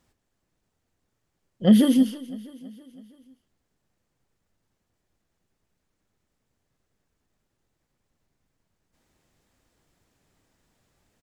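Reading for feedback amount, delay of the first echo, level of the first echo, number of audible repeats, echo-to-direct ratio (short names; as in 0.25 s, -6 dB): 53%, 0.326 s, -19.0 dB, 3, -17.5 dB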